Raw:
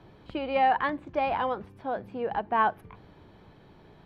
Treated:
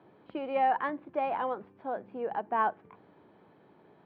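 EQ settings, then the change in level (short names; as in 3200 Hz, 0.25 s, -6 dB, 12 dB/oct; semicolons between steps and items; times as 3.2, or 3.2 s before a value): HPF 230 Hz 12 dB/oct; LPF 2100 Hz 6 dB/oct; air absorption 190 m; -2.0 dB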